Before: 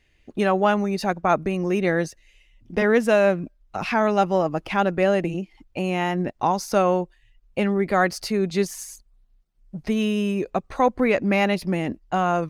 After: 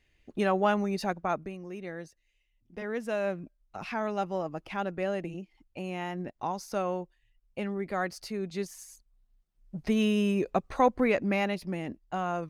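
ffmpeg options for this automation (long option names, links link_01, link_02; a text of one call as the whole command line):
ffmpeg -i in.wav -af "volume=9dB,afade=type=out:start_time=0.98:duration=0.62:silence=0.251189,afade=type=in:start_time=2.76:duration=0.6:silence=0.473151,afade=type=in:start_time=8.86:duration=1.15:silence=0.375837,afade=type=out:start_time=10.69:duration=0.89:silence=0.446684" out.wav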